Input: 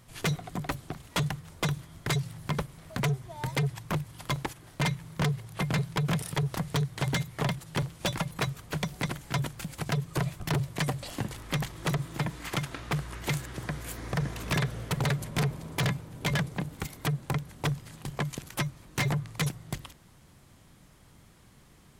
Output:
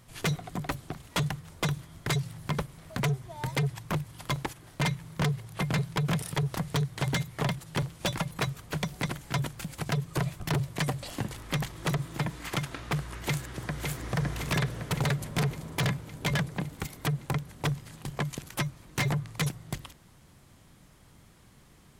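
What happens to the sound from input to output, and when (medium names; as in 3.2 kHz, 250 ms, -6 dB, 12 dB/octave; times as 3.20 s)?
13.21–13.87 s: echo throw 560 ms, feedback 65%, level -4.5 dB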